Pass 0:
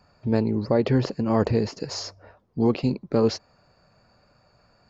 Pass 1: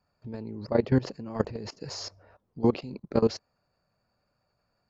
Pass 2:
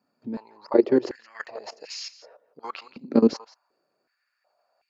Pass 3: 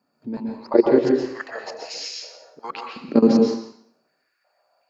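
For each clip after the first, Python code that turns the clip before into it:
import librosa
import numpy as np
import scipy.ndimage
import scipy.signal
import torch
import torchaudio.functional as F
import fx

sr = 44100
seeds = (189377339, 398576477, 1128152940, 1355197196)

y1 = fx.level_steps(x, sr, step_db=19)
y2 = y1 + 10.0 ** (-16.0 / 20.0) * np.pad(y1, (int(172 * sr / 1000.0), 0))[:len(y1)]
y2 = fx.filter_held_highpass(y2, sr, hz=2.7, low_hz=250.0, high_hz=2500.0)
y3 = fx.rev_plate(y2, sr, seeds[0], rt60_s=0.6, hf_ratio=1.0, predelay_ms=110, drr_db=0.5)
y3 = F.gain(torch.from_numpy(y3), 2.5).numpy()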